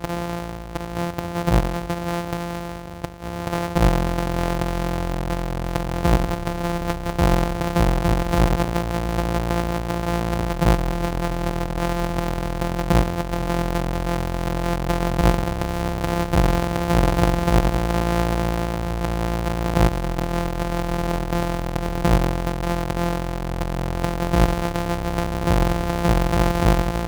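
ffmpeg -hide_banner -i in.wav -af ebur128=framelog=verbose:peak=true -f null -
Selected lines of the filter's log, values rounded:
Integrated loudness:
  I:         -23.0 LUFS
  Threshold: -33.0 LUFS
Loudness range:
  LRA:         3.3 LU
  Threshold: -43.1 LUFS
  LRA low:   -24.5 LUFS
  LRA high:  -21.2 LUFS
True peak:
  Peak:       -3.3 dBFS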